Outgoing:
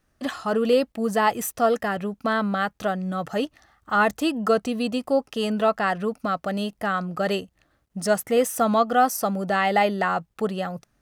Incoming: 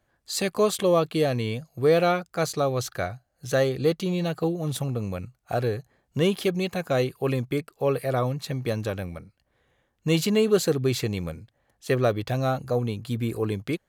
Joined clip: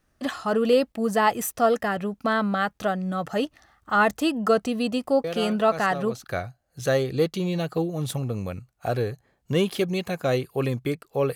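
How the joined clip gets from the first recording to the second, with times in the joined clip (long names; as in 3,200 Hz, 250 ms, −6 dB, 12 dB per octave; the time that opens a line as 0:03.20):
outgoing
0:05.24: mix in incoming from 0:01.90 1.00 s −10 dB
0:06.24: continue with incoming from 0:02.90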